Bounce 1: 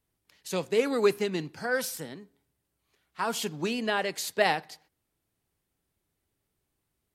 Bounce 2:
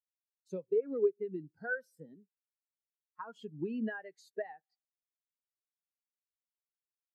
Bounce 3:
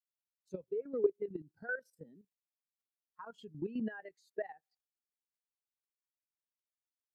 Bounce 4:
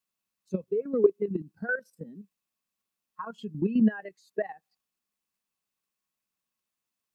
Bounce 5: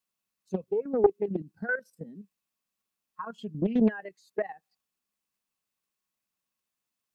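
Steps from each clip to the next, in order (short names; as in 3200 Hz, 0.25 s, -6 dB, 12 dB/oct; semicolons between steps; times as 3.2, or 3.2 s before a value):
dynamic EQ 1600 Hz, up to +5 dB, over -41 dBFS, Q 1.4; compressor 12:1, threshold -32 dBFS, peak gain reduction 16 dB; spectral expander 2.5:1
level quantiser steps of 12 dB; gain +1.5 dB
small resonant body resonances 200/1100/2600 Hz, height 10 dB; gain +8 dB
Doppler distortion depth 0.52 ms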